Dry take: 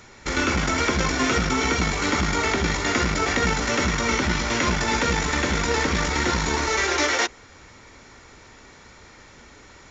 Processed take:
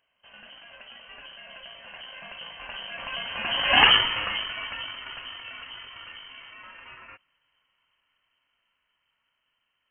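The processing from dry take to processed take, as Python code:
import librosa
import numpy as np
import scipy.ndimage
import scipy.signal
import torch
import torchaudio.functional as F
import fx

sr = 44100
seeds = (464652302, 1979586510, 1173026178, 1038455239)

y = fx.doppler_pass(x, sr, speed_mps=30, closest_m=2.2, pass_at_s=3.84)
y = fx.freq_invert(y, sr, carrier_hz=3100)
y = y * 10.0 ** (8.0 / 20.0)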